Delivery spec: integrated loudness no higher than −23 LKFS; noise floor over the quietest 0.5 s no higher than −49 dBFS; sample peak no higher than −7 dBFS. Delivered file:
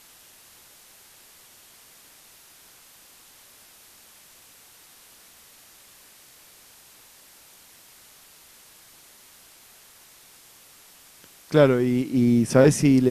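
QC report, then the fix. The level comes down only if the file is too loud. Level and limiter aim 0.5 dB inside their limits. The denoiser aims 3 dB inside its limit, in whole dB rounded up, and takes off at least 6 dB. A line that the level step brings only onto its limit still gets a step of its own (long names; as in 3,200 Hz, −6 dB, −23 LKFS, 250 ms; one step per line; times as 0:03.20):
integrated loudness −19.5 LKFS: out of spec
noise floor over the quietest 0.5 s −52 dBFS: in spec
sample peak −5.5 dBFS: out of spec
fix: level −4 dB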